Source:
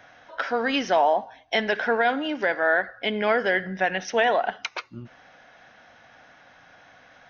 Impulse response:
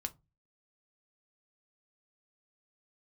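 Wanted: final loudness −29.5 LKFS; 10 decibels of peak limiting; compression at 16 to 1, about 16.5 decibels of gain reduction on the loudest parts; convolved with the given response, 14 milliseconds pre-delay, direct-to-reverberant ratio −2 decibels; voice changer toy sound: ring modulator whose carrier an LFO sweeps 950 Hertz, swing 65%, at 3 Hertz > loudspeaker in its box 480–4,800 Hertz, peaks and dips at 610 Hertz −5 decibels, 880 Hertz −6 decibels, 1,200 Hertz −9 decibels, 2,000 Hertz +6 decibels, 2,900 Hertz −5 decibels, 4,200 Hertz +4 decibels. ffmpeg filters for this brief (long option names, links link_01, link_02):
-filter_complex "[0:a]acompressor=threshold=-33dB:ratio=16,alimiter=level_in=5dB:limit=-24dB:level=0:latency=1,volume=-5dB,asplit=2[link_01][link_02];[1:a]atrim=start_sample=2205,adelay=14[link_03];[link_02][link_03]afir=irnorm=-1:irlink=0,volume=3dB[link_04];[link_01][link_04]amix=inputs=2:normalize=0,aeval=exprs='val(0)*sin(2*PI*950*n/s+950*0.65/3*sin(2*PI*3*n/s))':channel_layout=same,highpass=480,equalizer=frequency=610:width_type=q:width=4:gain=-5,equalizer=frequency=880:width_type=q:width=4:gain=-6,equalizer=frequency=1200:width_type=q:width=4:gain=-9,equalizer=frequency=2000:width_type=q:width=4:gain=6,equalizer=frequency=2900:width_type=q:width=4:gain=-5,equalizer=frequency=4200:width_type=q:width=4:gain=4,lowpass=frequency=4800:width=0.5412,lowpass=frequency=4800:width=1.3066,volume=9dB"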